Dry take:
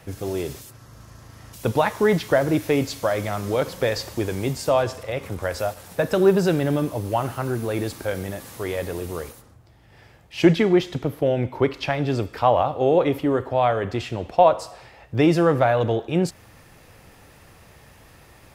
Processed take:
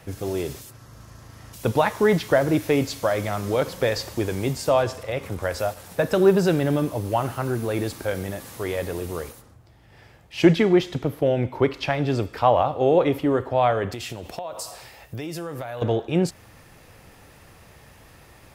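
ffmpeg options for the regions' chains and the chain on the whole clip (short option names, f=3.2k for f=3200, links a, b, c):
-filter_complex "[0:a]asettb=1/sr,asplit=3[a][b][c];[a]atrim=end=13.924[d];[b]atrim=start=13.92:end=15.82,asetpts=PTS-STARTPTS,afade=t=in:d=0.004:c=qsin,afade=t=out:st=1.896:d=0.004:c=qsin,aemphasis=mode=production:type=75fm,acompressor=threshold=-28dB:ratio=16:attack=3.2:release=140:knee=1:detection=peak[e];[c]atrim=start=15.816[f];[d][e]acrossfade=d=0.004:c1=hsin:c2=qsin[g];[g][f]acrossfade=d=0.004:c1=qsin:c2=hsin"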